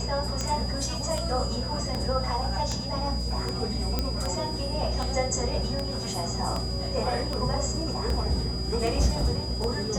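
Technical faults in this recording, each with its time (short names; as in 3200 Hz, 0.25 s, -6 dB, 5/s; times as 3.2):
hum 60 Hz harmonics 4 -32 dBFS
tick 78 rpm -16 dBFS
tone 4900 Hz -35 dBFS
3.99 pop -12 dBFS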